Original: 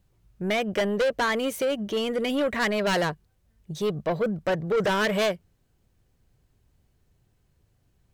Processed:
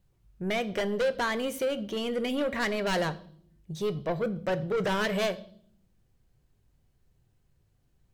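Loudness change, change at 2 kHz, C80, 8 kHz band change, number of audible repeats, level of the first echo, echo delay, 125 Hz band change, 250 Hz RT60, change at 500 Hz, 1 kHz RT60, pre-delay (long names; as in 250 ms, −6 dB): −4.0 dB, −4.5 dB, 21.5 dB, −4.0 dB, no echo audible, no echo audible, no echo audible, −2.5 dB, 1.1 s, −4.0 dB, 0.50 s, 4 ms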